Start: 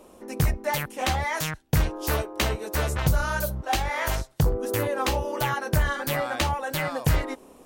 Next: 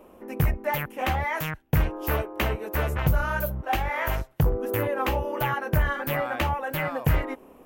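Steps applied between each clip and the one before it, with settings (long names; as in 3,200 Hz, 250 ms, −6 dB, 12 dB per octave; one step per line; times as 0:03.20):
flat-topped bell 6,000 Hz −12.5 dB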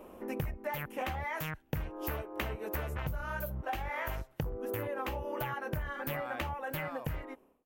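fade-out on the ending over 1.20 s
downward compressor 10 to 1, threshold −33 dBFS, peak gain reduction 16 dB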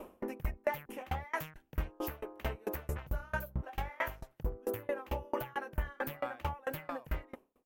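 tremolo with a ramp in dB decaying 4.5 Hz, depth 30 dB
level +7 dB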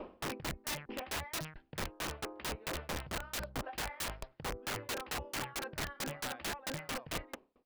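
downsampling to 11,025 Hz
wrap-around overflow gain 34.5 dB
level +2.5 dB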